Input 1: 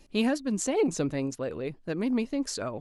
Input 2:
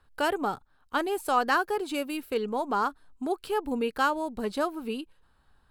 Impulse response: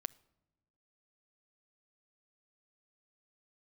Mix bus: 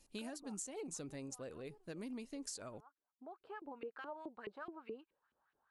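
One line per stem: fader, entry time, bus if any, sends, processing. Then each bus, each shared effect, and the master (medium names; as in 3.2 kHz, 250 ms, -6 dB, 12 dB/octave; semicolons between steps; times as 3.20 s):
-14.5 dB, 0.00 s, no send, peaking EQ 9.3 kHz +14.5 dB 1.5 oct
-4.5 dB, 0.00 s, no send, peak limiter -23.5 dBFS, peak gain reduction 11 dB; LFO band-pass saw up 4.7 Hz 330–2700 Hz; treble shelf 5.9 kHz -11.5 dB; auto duck -23 dB, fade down 0.90 s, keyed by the first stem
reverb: none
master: compression 10:1, threshold -42 dBFS, peak gain reduction 11 dB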